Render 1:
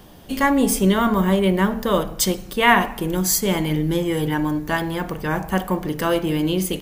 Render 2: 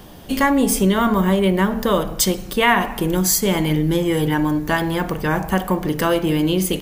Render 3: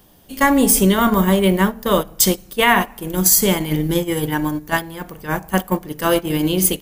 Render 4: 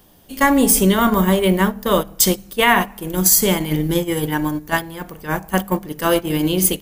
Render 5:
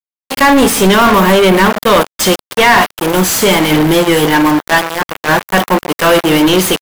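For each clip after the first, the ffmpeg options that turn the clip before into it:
-af "acompressor=threshold=-20dB:ratio=2,volume=4.5dB"
-af "highshelf=f=6.8k:g=10.5,agate=range=-14dB:threshold=-17dB:ratio=16:detection=peak,alimiter=level_in=3dB:limit=-1dB:release=50:level=0:latency=1,volume=-1dB"
-af "bandreject=f=66.11:t=h:w=4,bandreject=f=132.22:t=h:w=4,bandreject=f=198.33:t=h:w=4"
-filter_complex "[0:a]aeval=exprs='val(0)*gte(abs(val(0)),0.0398)':c=same,asplit=2[a][b];[b]highpass=f=720:p=1,volume=30dB,asoftclip=type=tanh:threshold=-1.5dB[c];[a][c]amix=inputs=2:normalize=0,lowpass=f=3.2k:p=1,volume=-6dB,volume=1dB" -ar 44100 -c:a libvorbis -b:a 128k

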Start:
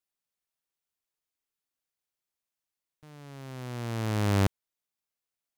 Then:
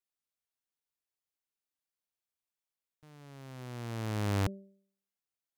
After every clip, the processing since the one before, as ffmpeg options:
-af "bandreject=f=195.5:t=h:w=4,bandreject=f=391:t=h:w=4,bandreject=f=586.5:t=h:w=4,volume=-5.5dB"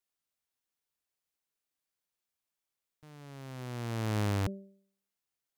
-af "alimiter=level_in=3.5dB:limit=-24dB:level=0:latency=1:release=14,volume=-3.5dB,volume=3dB"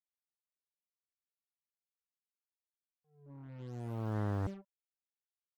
-af "afftfilt=real='re*gte(hypot(re,im),0.0178)':imag='im*gte(hypot(re,im),0.0178)':win_size=1024:overlap=0.75,acrusher=bits=7:mix=0:aa=0.5,volume=-4dB"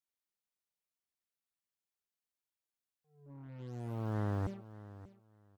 -af "aecho=1:1:587|1174:0.15|0.0269"

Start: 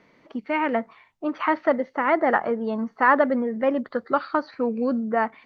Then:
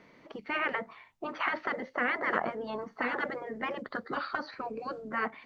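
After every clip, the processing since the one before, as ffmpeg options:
-af "afftfilt=real='re*lt(hypot(re,im),0.282)':imag='im*lt(hypot(re,im),0.282)':win_size=1024:overlap=0.75"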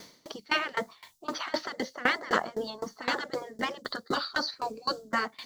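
-af "aexciter=amount=6.5:drive=8.4:freq=3.6k,aeval=exprs='val(0)*pow(10,-23*if(lt(mod(3.9*n/s,1),2*abs(3.9)/1000),1-mod(3.9*n/s,1)/(2*abs(3.9)/1000),(mod(3.9*n/s,1)-2*abs(3.9)/1000)/(1-2*abs(3.9)/1000))/20)':c=same,volume=8.5dB"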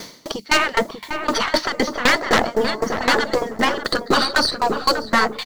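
-filter_complex "[0:a]aeval=exprs='0.355*sin(PI/2*3.16*val(0)/0.355)':c=same,aeval=exprs='0.376*(cos(1*acos(clip(val(0)/0.376,-1,1)))-cos(1*PI/2))+0.0422*(cos(4*acos(clip(val(0)/0.376,-1,1)))-cos(4*PI/2))':c=same,asplit=2[a][b];[b]adelay=592,lowpass=f=1.2k:p=1,volume=-6dB,asplit=2[c][d];[d]adelay=592,lowpass=f=1.2k:p=1,volume=0.25,asplit=2[e][f];[f]adelay=592,lowpass=f=1.2k:p=1,volume=0.25[g];[a][c][e][g]amix=inputs=4:normalize=0"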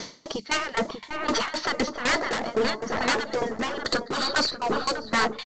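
-af "aresample=16000,volume=17.5dB,asoftclip=hard,volume=-17.5dB,aresample=44100,tremolo=f=2.3:d=0.58,volume=-1dB"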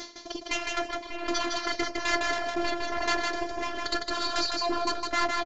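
-filter_complex "[0:a]afftfilt=real='hypot(re,im)*cos(PI*b)':imag='0':win_size=512:overlap=0.75,asplit=2[a][b];[b]aecho=0:1:158|316|474:0.668|0.114|0.0193[c];[a][c]amix=inputs=2:normalize=0,aresample=16000,aresample=44100"

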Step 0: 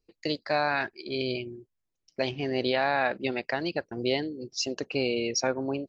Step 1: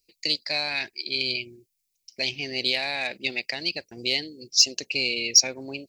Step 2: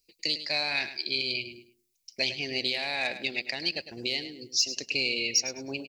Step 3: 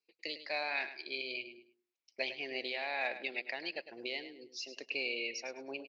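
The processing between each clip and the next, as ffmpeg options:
-af "aeval=exprs='0.266*(cos(1*acos(clip(val(0)/0.266,-1,1)))-cos(1*PI/2))+0.00596*(cos(5*acos(clip(val(0)/0.266,-1,1)))-cos(5*PI/2))':c=same,highshelf=f=1.8k:t=q:w=3:g=9,aexciter=amount=4.4:drive=3.2:freq=4.2k,volume=-7dB"
-af "alimiter=limit=-14.5dB:level=0:latency=1:release=359,aecho=1:1:104|208|312:0.251|0.0628|0.0157"
-af "highpass=430,lowpass=2.1k,volume=-2dB"

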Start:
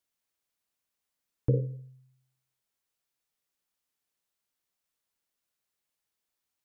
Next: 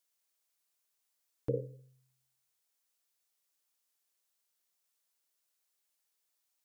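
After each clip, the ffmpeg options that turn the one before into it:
-af "bass=f=250:g=-13,treble=f=4k:g=6,volume=-1dB"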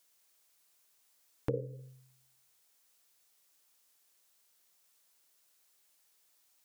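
-af "acompressor=threshold=-46dB:ratio=2.5,volume=10.5dB"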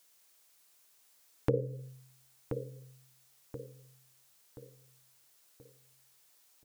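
-filter_complex "[0:a]asplit=2[a][b];[b]adelay=1029,lowpass=f=2k:p=1,volume=-8dB,asplit=2[c][d];[d]adelay=1029,lowpass=f=2k:p=1,volume=0.44,asplit=2[e][f];[f]adelay=1029,lowpass=f=2k:p=1,volume=0.44,asplit=2[g][h];[h]adelay=1029,lowpass=f=2k:p=1,volume=0.44,asplit=2[i][j];[j]adelay=1029,lowpass=f=2k:p=1,volume=0.44[k];[a][c][e][g][i][k]amix=inputs=6:normalize=0,volume=4.5dB"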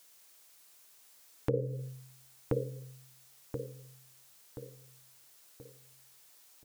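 -af "alimiter=limit=-22dB:level=0:latency=1:release=335,volume=5.5dB"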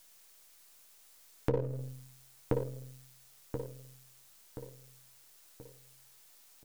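-af "aeval=exprs='if(lt(val(0),0),0.447*val(0),val(0))':c=same,volume=2.5dB"

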